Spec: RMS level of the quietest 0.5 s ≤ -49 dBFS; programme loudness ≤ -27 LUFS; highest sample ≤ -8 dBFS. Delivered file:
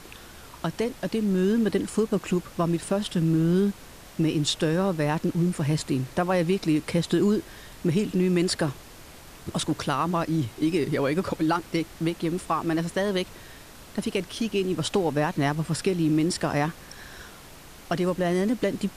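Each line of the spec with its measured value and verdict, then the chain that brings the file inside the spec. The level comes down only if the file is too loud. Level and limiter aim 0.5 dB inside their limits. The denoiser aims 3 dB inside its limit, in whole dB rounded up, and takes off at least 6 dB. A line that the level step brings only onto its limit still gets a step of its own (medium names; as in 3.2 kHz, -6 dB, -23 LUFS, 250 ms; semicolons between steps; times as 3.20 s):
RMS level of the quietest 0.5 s -46 dBFS: fail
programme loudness -26.0 LUFS: fail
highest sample -12.5 dBFS: pass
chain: noise reduction 6 dB, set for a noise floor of -46 dBFS; trim -1.5 dB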